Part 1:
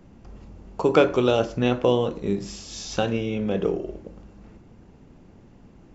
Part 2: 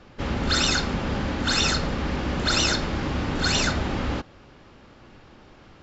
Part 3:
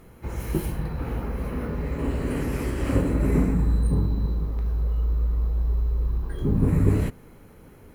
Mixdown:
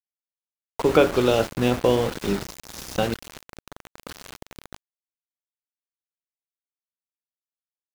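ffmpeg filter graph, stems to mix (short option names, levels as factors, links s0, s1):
-filter_complex "[0:a]volume=1.06,asplit=3[s0][s1][s2];[s0]atrim=end=3.14,asetpts=PTS-STARTPTS,afade=t=out:st=3.136:d=0.004:c=hsin[s3];[s1]atrim=start=3.14:end=4.06,asetpts=PTS-STARTPTS,volume=0[s4];[s2]atrim=start=4.06,asetpts=PTS-STARTPTS,afade=t=in:d=0.004:c=hsin[s5];[s3][s4][s5]concat=n=3:v=0:a=1[s6];[1:a]adelay=650,volume=0.668[s7];[2:a]alimiter=limit=0.15:level=0:latency=1:release=229,aeval=exprs='max(val(0),0)':c=same,volume=0.316[s8];[s7][s8]amix=inputs=2:normalize=0,highshelf=f=3800:g=-12,acompressor=threshold=0.0178:ratio=2.5,volume=1[s9];[s6][s9]amix=inputs=2:normalize=0,aeval=exprs='val(0)*gte(abs(val(0)),0.0447)':c=same"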